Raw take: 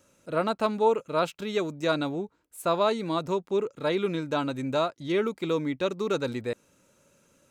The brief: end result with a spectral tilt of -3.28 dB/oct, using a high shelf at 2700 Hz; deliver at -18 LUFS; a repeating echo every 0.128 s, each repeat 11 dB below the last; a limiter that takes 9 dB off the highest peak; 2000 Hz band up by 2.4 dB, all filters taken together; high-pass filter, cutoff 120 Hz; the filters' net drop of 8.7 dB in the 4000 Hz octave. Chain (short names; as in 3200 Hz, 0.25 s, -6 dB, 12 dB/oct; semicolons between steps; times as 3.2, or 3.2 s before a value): HPF 120 Hz; bell 2000 Hz +8 dB; high shelf 2700 Hz -6.5 dB; bell 4000 Hz -7.5 dB; limiter -20 dBFS; feedback echo 0.128 s, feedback 28%, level -11 dB; gain +13 dB